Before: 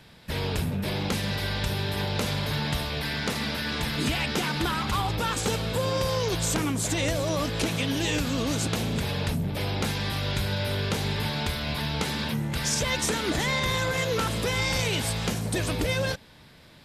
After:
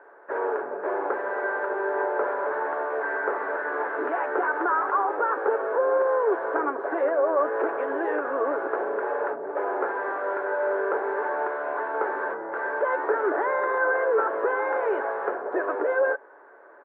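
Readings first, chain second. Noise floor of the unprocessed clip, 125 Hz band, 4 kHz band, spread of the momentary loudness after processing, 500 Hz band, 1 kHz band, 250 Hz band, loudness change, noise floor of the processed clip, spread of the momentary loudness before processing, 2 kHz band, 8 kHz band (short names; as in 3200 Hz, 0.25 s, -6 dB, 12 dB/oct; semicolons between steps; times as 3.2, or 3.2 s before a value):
-52 dBFS, under -40 dB, under -35 dB, 6 LU, +7.5 dB, +7.0 dB, -6.5 dB, +1.0 dB, -50 dBFS, 3 LU, +2.5 dB, under -40 dB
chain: Chebyshev band-pass 360–1600 Hz, order 4; in parallel at -2 dB: limiter -26.5 dBFS, peak gain reduction 8.5 dB; on the sum: comb 7.1 ms, depth 33%; gain +3.5 dB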